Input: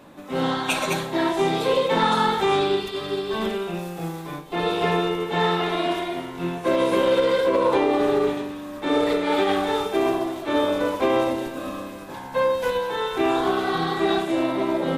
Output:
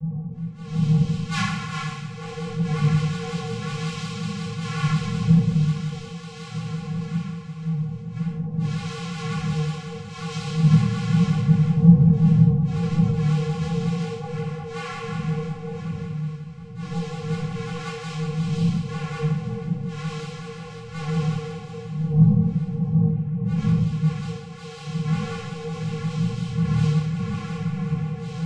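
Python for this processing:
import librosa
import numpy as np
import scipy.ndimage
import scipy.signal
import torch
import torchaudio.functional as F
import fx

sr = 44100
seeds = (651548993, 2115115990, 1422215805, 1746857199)

y = fx.dmg_wind(x, sr, seeds[0], corner_hz=170.0, level_db=-22.0)
y = fx.hum_notches(y, sr, base_hz=50, count=3)
y = fx.spec_gate(y, sr, threshold_db=-30, keep='strong')
y = fx.curve_eq(y, sr, hz=(190.0, 400.0, 1500.0, 2400.0, 5900.0), db=(0, -14, -16, 13, -3))
y = fx.stretch_vocoder_free(y, sr, factor=1.9)
y = fx.vocoder(y, sr, bands=4, carrier='square', carrier_hz=157.0)
y = fx.vibrato(y, sr, rate_hz=5.5, depth_cents=75.0)
y = fx.echo_multitap(y, sr, ms=(52, 145, 376, 478), db=(-7.0, -16.5, -18.5, -15.0))
y = fx.room_shoebox(y, sr, seeds[1], volume_m3=600.0, walls='furnished', distance_m=5.3)
y = fx.detune_double(y, sr, cents=12)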